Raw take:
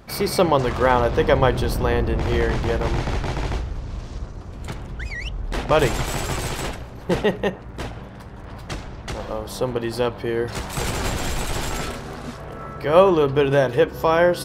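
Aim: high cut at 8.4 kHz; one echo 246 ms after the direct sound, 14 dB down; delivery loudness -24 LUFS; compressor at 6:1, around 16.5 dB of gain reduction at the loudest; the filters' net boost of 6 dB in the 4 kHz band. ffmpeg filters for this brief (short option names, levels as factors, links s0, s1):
-af "lowpass=8400,equalizer=f=4000:t=o:g=8,acompressor=threshold=0.0447:ratio=6,aecho=1:1:246:0.2,volume=2.37"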